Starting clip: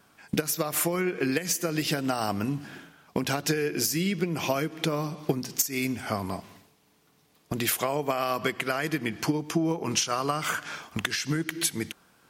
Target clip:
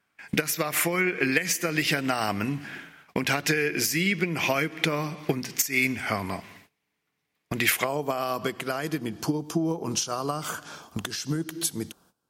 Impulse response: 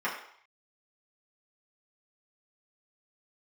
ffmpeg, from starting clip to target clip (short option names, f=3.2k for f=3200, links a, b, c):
-af "agate=range=-17dB:threshold=-56dB:ratio=16:detection=peak,asetnsamples=n=441:p=0,asendcmd='7.84 equalizer g -6;8.99 equalizer g -12.5',equalizer=f=2.1k:t=o:w=0.92:g=11"